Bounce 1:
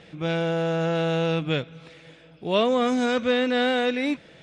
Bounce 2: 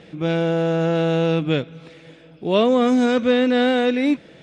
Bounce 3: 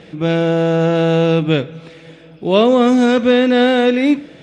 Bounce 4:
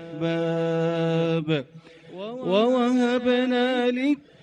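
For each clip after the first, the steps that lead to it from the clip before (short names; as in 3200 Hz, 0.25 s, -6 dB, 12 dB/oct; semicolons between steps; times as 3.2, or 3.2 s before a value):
bell 290 Hz +6.5 dB 1.8 oct; gain +1 dB
reverb RT60 0.65 s, pre-delay 22 ms, DRR 17.5 dB; gain +5 dB
reverb removal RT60 0.53 s; reverse echo 0.335 s -14 dB; gain -8 dB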